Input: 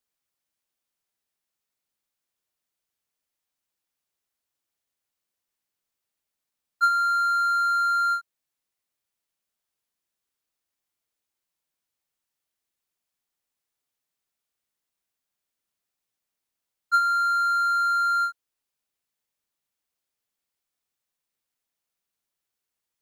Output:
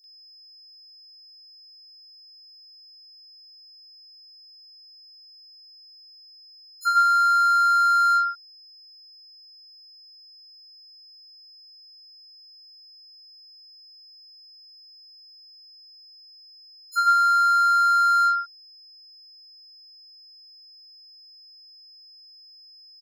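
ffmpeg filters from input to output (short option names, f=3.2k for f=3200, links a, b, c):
-filter_complex "[0:a]aeval=exprs='val(0)+0.00282*sin(2*PI*5100*n/s)':c=same,acrossover=split=1400|5900[a][b][c];[b]adelay=40[d];[a]adelay=140[e];[e][d][c]amix=inputs=3:normalize=0,volume=4dB"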